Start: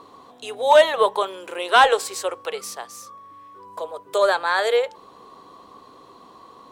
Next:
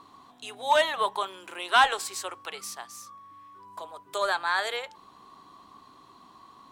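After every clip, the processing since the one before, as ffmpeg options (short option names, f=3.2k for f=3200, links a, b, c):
-af "equalizer=f=490:t=o:w=0.64:g=-14.5,volume=-4dB"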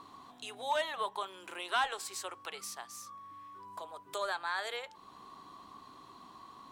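-af "acompressor=threshold=-48dB:ratio=1.5"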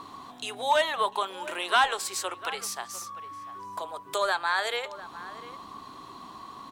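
-filter_complex "[0:a]asplit=2[a][b];[b]adelay=699.7,volume=-15dB,highshelf=f=4k:g=-15.7[c];[a][c]amix=inputs=2:normalize=0,volume=9dB"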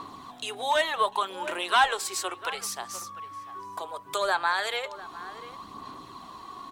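-af "aphaser=in_gain=1:out_gain=1:delay=2.8:decay=0.34:speed=0.68:type=sinusoidal"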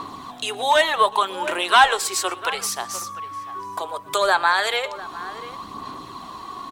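-af "aecho=1:1:120:0.075,volume=7.5dB"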